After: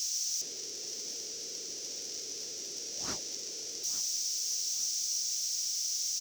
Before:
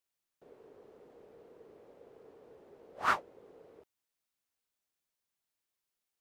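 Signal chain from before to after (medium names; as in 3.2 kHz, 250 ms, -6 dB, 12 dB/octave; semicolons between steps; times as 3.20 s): zero-crossing glitches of -21.5 dBFS; FFT filter 330 Hz 0 dB, 1.2 kHz -23 dB, 4 kHz -8 dB, 5.8 kHz +8 dB, 9.6 kHz -24 dB; feedback delay 857 ms, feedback 33%, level -15 dB; trim +2.5 dB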